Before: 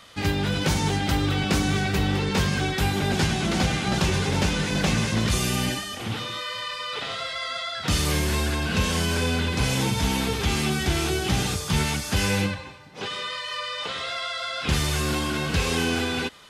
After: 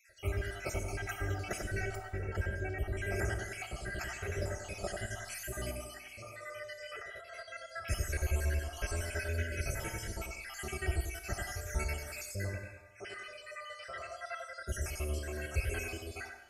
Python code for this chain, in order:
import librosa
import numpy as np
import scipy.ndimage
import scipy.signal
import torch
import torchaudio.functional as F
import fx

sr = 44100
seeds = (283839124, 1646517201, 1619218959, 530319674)

y = fx.spec_dropout(x, sr, seeds[0], share_pct=64)
y = fx.high_shelf(y, sr, hz=2300.0, db=-12.0, at=(1.95, 2.96), fade=0.02)
y = fx.echo_bbd(y, sr, ms=93, stages=1024, feedback_pct=34, wet_db=-4.5)
y = fx.rev_schroeder(y, sr, rt60_s=1.0, comb_ms=25, drr_db=8.5)
y = fx.over_compress(y, sr, threshold_db=-36.0, ratio=-0.5, at=(7.02, 7.42))
y = fx.fixed_phaser(y, sr, hz=1000.0, stages=6)
y = y + 0.85 * np.pad(y, (int(3.1 * sr / 1000.0), 0))[:len(y)]
y = y * librosa.db_to_amplitude(-8.5)